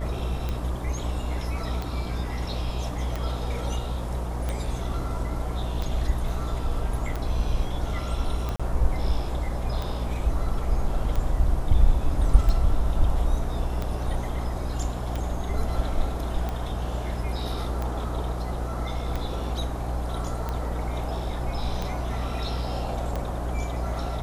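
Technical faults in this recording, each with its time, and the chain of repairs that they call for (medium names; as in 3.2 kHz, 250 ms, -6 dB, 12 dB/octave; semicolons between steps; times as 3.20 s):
buzz 60 Hz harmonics 21 -30 dBFS
tick 45 rpm -17 dBFS
8.56–8.60 s: dropout 36 ms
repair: de-click; de-hum 60 Hz, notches 21; interpolate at 8.56 s, 36 ms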